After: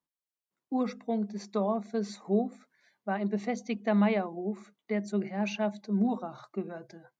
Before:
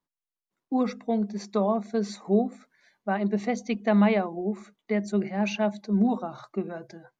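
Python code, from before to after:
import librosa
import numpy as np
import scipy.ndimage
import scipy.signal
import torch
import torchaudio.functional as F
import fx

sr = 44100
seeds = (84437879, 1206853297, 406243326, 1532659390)

y = scipy.signal.sosfilt(scipy.signal.butter(2, 48.0, 'highpass', fs=sr, output='sos'), x)
y = y * 10.0 ** (-4.5 / 20.0)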